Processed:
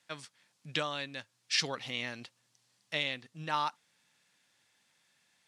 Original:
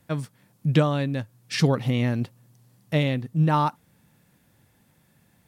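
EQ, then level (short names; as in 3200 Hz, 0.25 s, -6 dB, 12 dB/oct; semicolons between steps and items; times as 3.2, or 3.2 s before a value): band-pass 4900 Hz, Q 0.51; air absorption 85 m; high shelf 4900 Hz +9.5 dB; 0.0 dB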